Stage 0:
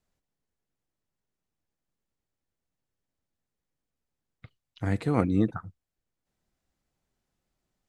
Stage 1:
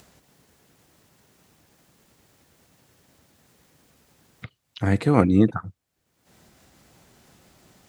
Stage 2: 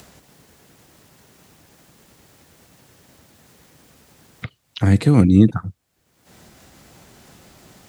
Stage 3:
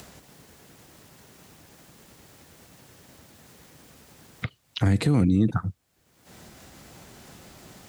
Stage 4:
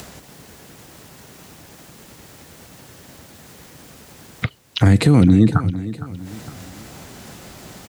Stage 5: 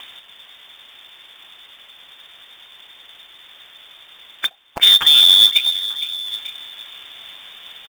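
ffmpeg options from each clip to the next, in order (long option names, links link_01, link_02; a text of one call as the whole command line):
ffmpeg -i in.wav -filter_complex "[0:a]asplit=2[link_01][link_02];[link_02]acompressor=mode=upward:threshold=-33dB:ratio=2.5,volume=-1.5dB[link_03];[link_01][link_03]amix=inputs=2:normalize=0,highpass=79,volume=2dB" out.wav
ffmpeg -i in.wav -filter_complex "[0:a]acrossover=split=290|3000[link_01][link_02][link_03];[link_02]acompressor=threshold=-35dB:ratio=4[link_04];[link_01][link_04][link_03]amix=inputs=3:normalize=0,volume=8dB" out.wav
ffmpeg -i in.wav -af "alimiter=limit=-12.5dB:level=0:latency=1:release=68" out.wav
ffmpeg -i in.wav -af "aecho=1:1:460|920|1380|1840:0.178|0.0729|0.0299|0.0123,volume=8.5dB" out.wav
ffmpeg -i in.wav -af "aecho=1:1:893:0.106,lowpass=frequency=3100:width_type=q:width=0.5098,lowpass=frequency=3100:width_type=q:width=0.6013,lowpass=frequency=3100:width_type=q:width=0.9,lowpass=frequency=3100:width_type=q:width=2.563,afreqshift=-3700,acrusher=bits=3:mode=log:mix=0:aa=0.000001,volume=1dB" out.wav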